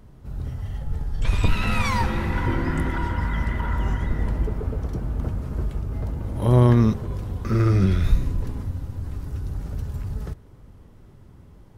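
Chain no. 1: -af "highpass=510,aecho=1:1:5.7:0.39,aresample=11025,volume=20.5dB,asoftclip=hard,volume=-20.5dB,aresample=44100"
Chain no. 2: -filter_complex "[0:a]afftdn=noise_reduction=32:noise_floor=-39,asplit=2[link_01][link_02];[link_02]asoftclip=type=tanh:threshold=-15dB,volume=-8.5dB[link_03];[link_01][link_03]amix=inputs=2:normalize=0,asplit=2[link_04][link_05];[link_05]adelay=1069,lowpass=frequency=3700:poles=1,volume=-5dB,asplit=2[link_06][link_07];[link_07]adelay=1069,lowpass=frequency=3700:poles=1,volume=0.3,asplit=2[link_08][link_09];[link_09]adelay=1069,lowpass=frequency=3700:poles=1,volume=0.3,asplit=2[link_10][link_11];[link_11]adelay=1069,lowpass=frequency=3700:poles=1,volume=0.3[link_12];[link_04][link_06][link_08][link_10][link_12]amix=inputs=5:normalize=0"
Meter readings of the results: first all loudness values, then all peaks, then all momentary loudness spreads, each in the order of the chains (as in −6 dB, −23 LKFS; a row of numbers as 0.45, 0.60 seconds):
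−32.0, −21.5 LKFS; −17.5, −1.5 dBFS; 22, 16 LU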